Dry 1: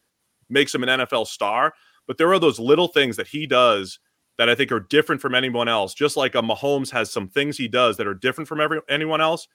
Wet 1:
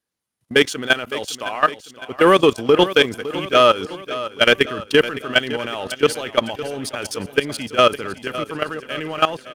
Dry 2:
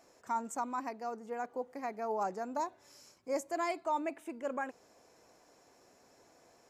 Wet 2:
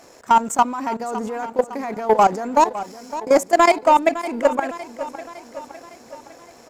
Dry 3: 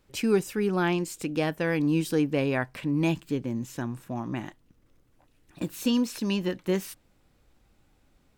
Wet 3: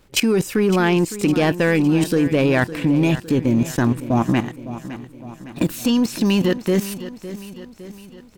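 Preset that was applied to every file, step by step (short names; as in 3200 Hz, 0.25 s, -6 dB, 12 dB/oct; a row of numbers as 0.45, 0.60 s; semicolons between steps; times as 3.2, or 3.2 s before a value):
level quantiser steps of 17 dB; sample leveller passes 1; feedback echo 0.559 s, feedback 54%, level -14 dB; match loudness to -19 LUFS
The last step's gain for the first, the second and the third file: +3.0, +20.5, +15.0 dB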